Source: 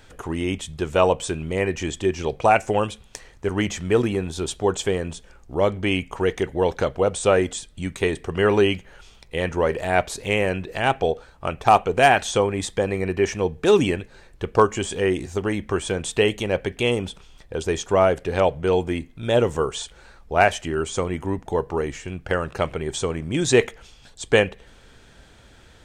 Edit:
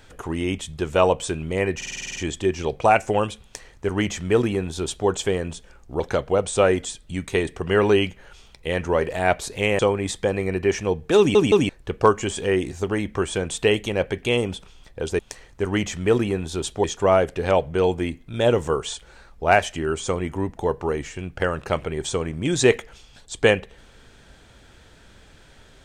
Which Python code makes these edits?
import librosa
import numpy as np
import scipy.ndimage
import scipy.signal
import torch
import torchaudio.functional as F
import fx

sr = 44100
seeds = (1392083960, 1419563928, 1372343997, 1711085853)

y = fx.edit(x, sr, fx.stutter(start_s=1.76, slice_s=0.05, count=9),
    fx.duplicate(start_s=3.03, length_s=1.65, to_s=17.73),
    fx.cut(start_s=5.6, length_s=1.08),
    fx.cut(start_s=10.47, length_s=1.86),
    fx.stutter_over(start_s=13.72, slice_s=0.17, count=3), tone=tone)